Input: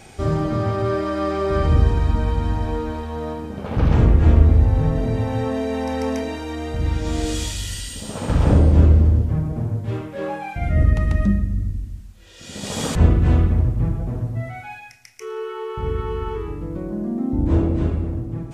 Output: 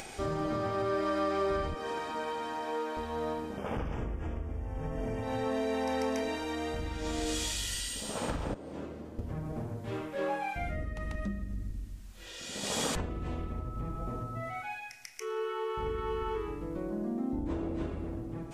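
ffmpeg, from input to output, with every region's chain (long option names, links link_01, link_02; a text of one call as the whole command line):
ffmpeg -i in.wav -filter_complex "[0:a]asettb=1/sr,asplit=3[link_01][link_02][link_03];[link_01]atrim=end=1.744[link_04];[link_02]atrim=start=1.74:end=2.97,asetpts=PTS-STARTPTS,afade=type=in:duration=0.004:curve=qsin,afade=type=out:start_time=1.226:duration=0.004:curve=qsin,highpass=390,bandreject=frequency=4000:width=20[link_05];[link_03]atrim=start=2.966[link_06];[link_04][link_05]acrossfade=duration=0.004:curve1=hsin:curve2=qsin[link_07];[link_07][link_06]acrossfade=duration=0.004:curve1=qsin:curve2=hsin,asettb=1/sr,asplit=3[link_08][link_09][link_10];[link_08]atrim=end=3.574[link_11];[link_09]atrim=start=3.57:end=5.23,asetpts=PTS-STARTPTS,afade=type=in:duration=0.004:curve=qsin,afade=type=out:start_time=1.656:duration=0.004:curve=qsin,asuperstop=centerf=4100:order=4:qfactor=2.6,equalizer=frequency=63:width_type=o:width=2.4:gain=2.5[link_12];[link_10]atrim=start=5.226[link_13];[link_11][link_12]acrossfade=duration=0.004:curve1=hsin:curve2=qsin[link_14];[link_14][link_13]acrossfade=duration=0.004:curve1=qsin:curve2=hsin,asettb=1/sr,asplit=3[link_15][link_16][link_17];[link_15]atrim=end=8.544[link_18];[link_16]atrim=start=8.54:end=9.19,asetpts=PTS-STARTPTS,afade=type=in:duration=0.004:curve=qsin,afade=type=out:start_time=0.646:duration=0.004:curve=qsin,agate=range=-11dB:threshold=-4dB:ratio=16:release=100:detection=peak,highpass=180[link_19];[link_17]atrim=start=9.186[link_20];[link_18][link_19]acrossfade=duration=0.004:curve1=hsin:curve2=qsin[link_21];[link_21][link_20]acrossfade=duration=0.004:curve1=qsin:curve2=hsin,asettb=1/sr,asplit=3[link_22][link_23][link_24];[link_22]atrim=end=13.094[link_25];[link_23]atrim=start=13.09:end=14.62,asetpts=PTS-STARTPTS,afade=type=in:duration=0.004:curve=qsin,afade=type=out:start_time=1.526:duration=0.004:curve=qsin,equalizer=frequency=1400:width=3.9:gain=-11.5,aeval=exprs='val(0)+0.0141*sin(2*PI*1300*n/s)':channel_layout=same[link_26];[link_24]atrim=start=14.616[link_27];[link_25][link_26]acrossfade=duration=0.004:curve1=hsin:curve2=qsin[link_28];[link_28][link_27]acrossfade=duration=0.004:curve1=qsin:curve2=hsin,acompressor=threshold=-20dB:ratio=12,equalizer=frequency=94:width=0.53:gain=-12,acompressor=mode=upward:threshold=-35dB:ratio=2.5,volume=-3.5dB" out.wav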